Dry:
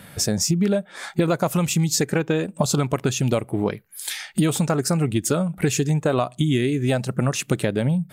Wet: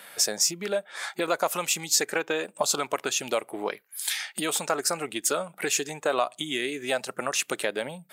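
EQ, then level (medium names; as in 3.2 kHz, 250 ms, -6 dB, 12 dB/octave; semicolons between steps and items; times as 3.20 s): high-pass 470 Hz 12 dB/octave; tilt EQ +2 dB/octave; treble shelf 4.2 kHz -7 dB; 0.0 dB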